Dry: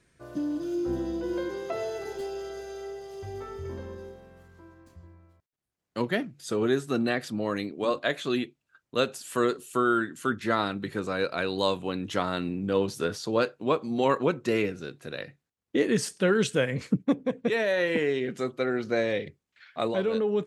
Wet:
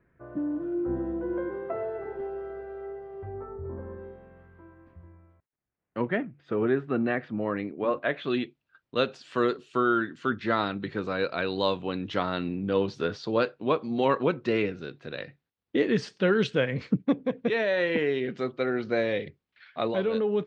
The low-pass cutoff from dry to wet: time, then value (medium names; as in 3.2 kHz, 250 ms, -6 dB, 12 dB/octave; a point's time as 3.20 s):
low-pass 24 dB/octave
3.24 s 1.8 kHz
3.61 s 1.1 kHz
4.12 s 2.4 kHz
8.02 s 2.4 kHz
8.43 s 4.5 kHz